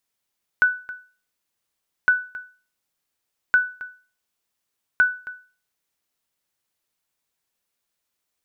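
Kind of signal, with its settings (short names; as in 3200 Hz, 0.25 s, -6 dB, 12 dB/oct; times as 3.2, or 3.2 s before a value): sonar ping 1490 Hz, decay 0.37 s, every 1.46 s, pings 4, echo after 0.27 s, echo -17.5 dB -9 dBFS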